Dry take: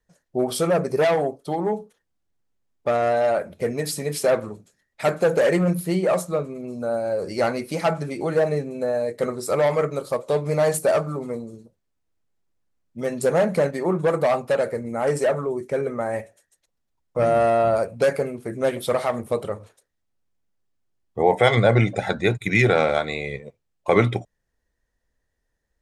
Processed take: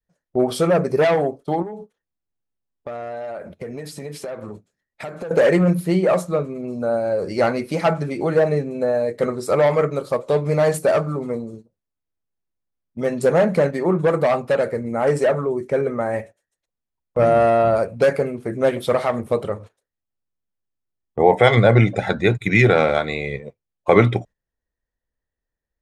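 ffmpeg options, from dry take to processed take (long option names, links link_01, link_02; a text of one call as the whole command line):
ffmpeg -i in.wav -filter_complex "[0:a]asettb=1/sr,asplit=3[link_01][link_02][link_03];[link_01]atrim=end=1.624[link_04];[link_02]atrim=start=1.62:end=5.31,asetpts=PTS-STARTPTS,afade=type=in:duration=0.004:curve=qsin,afade=type=out:start_time=3.686:duration=0.004:curve=qsin,acompressor=threshold=-32dB:ratio=8:attack=3.2:release=140:knee=1:detection=peak[link_05];[link_03]atrim=start=5.306[link_06];[link_04][link_05]acrossfade=duration=0.004:curve1=hsin:curve2=qsin[link_07];[link_07][link_06]acrossfade=duration=0.004:curve1=qsin:curve2=hsin,adynamicequalizer=threshold=0.0224:dfrequency=750:dqfactor=1:tfrequency=750:tqfactor=1:attack=5:release=100:ratio=0.375:range=1.5:mode=cutabove:tftype=bell,agate=range=-13dB:threshold=-41dB:ratio=16:detection=peak,aemphasis=mode=reproduction:type=cd,volume=4dB" out.wav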